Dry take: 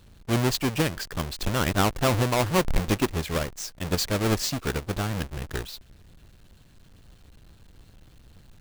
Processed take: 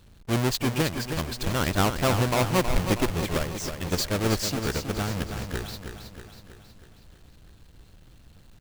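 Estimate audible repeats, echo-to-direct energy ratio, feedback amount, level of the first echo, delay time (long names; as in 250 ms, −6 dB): 6, −6.5 dB, 55%, −8.0 dB, 320 ms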